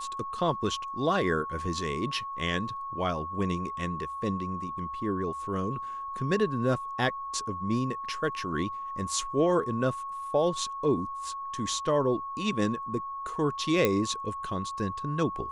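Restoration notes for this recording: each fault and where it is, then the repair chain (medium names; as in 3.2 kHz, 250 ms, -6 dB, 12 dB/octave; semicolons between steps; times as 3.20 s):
whine 1.1 kHz -34 dBFS
13.85 s: pop -10 dBFS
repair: de-click; band-stop 1.1 kHz, Q 30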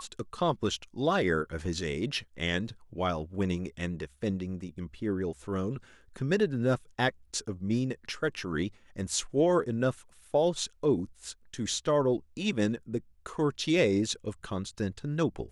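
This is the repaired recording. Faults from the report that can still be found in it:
nothing left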